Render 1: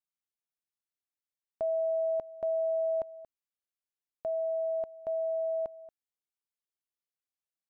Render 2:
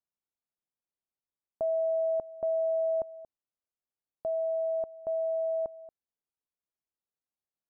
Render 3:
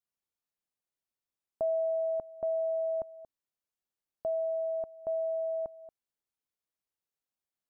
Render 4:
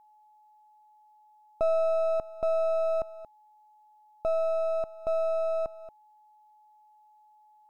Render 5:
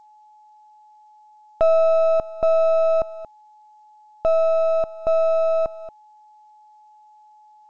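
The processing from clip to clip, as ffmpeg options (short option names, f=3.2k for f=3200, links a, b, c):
-af "lowpass=1k,volume=2dB"
-af "adynamicequalizer=threshold=0.00631:dfrequency=480:dqfactor=1.1:tfrequency=480:tqfactor=1.1:attack=5:release=100:ratio=0.375:range=3:mode=cutabove:tftype=bell"
-af "aeval=exprs='if(lt(val(0),0),0.447*val(0),val(0))':c=same,aeval=exprs='val(0)+0.000631*sin(2*PI*850*n/s)':c=same,volume=7dB"
-af "volume=9dB" -ar 16000 -c:a g722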